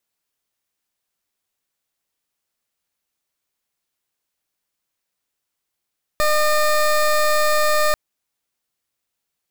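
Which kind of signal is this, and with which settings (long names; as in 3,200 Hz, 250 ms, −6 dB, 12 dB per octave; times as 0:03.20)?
pulse wave 606 Hz, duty 20% −16.5 dBFS 1.74 s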